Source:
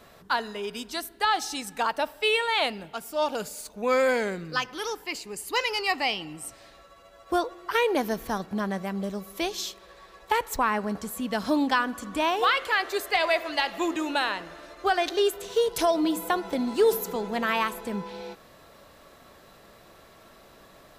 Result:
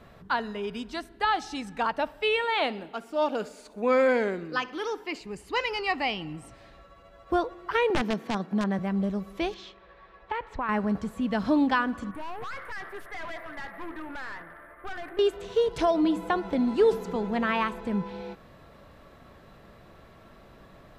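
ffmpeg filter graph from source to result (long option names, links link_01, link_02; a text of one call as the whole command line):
ffmpeg -i in.wav -filter_complex "[0:a]asettb=1/sr,asplit=3[link_01][link_02][link_03];[link_01]atrim=end=2.444[link_04];[link_02]atrim=start=2.44:end=5.21,asetpts=PTS-STARTPTS,afade=type=in:duration=0.004:curve=qsin,afade=type=out:start_time=2.766:duration=0.004:curve=qsin,lowshelf=frequency=190:width_type=q:width=1.5:gain=-12.5,aecho=1:1:64|128|192|256|320:0.0891|0.0517|0.03|0.0174|0.0101,atrim=end_sample=122157[link_05];[link_03]atrim=start=5.206[link_06];[link_04][link_05]acrossfade=duration=0.004:curve1=hsin:curve2=qsin[link_07];[link_07][link_06]acrossfade=duration=0.004:curve1=qsin:curve2=hsin,asettb=1/sr,asplit=3[link_08][link_09][link_10];[link_08]atrim=end=7.904[link_11];[link_09]atrim=start=7.9:end=8.79,asetpts=PTS-STARTPTS,afade=type=in:duration=0.004:curve=qsin,afade=type=out:start_time=0.886:duration=0.004:curve=qsin,highpass=frequency=170:width=0.5412,highpass=frequency=170:width=1.3066,aeval=exprs='(mod(7.5*val(0)+1,2)-1)/7.5':channel_layout=same[link_12];[link_10]atrim=start=8.786[link_13];[link_11][link_12]acrossfade=duration=0.004:curve1=hsin:curve2=qsin[link_14];[link_14][link_13]acrossfade=duration=0.004:curve1=qsin:curve2=hsin,asettb=1/sr,asplit=3[link_15][link_16][link_17];[link_15]atrim=end=9.544[link_18];[link_16]atrim=start=9.54:end=10.69,asetpts=PTS-STARTPTS,afade=type=in:duration=0.004:curve=qsin,afade=type=out:start_time=1.146:duration=0.004:curve=qsin,lowpass=3000,lowshelf=frequency=490:gain=-6.5,acompressor=threshold=-28dB:ratio=2:attack=3.2:release=140:knee=1:detection=peak[link_19];[link_17]atrim=start=10.686[link_20];[link_18][link_19]acrossfade=duration=0.004:curve1=hsin:curve2=qsin[link_21];[link_21][link_20]acrossfade=duration=0.004:curve1=qsin:curve2=hsin,asettb=1/sr,asplit=3[link_22][link_23][link_24];[link_22]atrim=end=12.114[link_25];[link_23]atrim=start=12.11:end=15.19,asetpts=PTS-STARTPTS,afade=type=in:duration=0.004:curve=qsin,afade=type=out:start_time=3.076:duration=0.004:curve=qsin,asuperstop=centerf=4600:order=12:qfactor=0.62,tiltshelf=frequency=1100:gain=-9.5,aeval=exprs='(tanh(56.2*val(0)+0.3)-tanh(0.3))/56.2':channel_layout=same[link_26];[link_24]atrim=start=15.186[link_27];[link_25][link_26]acrossfade=duration=0.004:curve1=hsin:curve2=qsin[link_28];[link_28][link_27]acrossfade=duration=0.004:curve1=qsin:curve2=hsin,acrossover=split=9000[link_29][link_30];[link_30]acompressor=threshold=-60dB:ratio=4:attack=1:release=60[link_31];[link_29][link_31]amix=inputs=2:normalize=0,bass=frequency=250:gain=8,treble=frequency=4000:gain=-11,volume=-1dB" out.wav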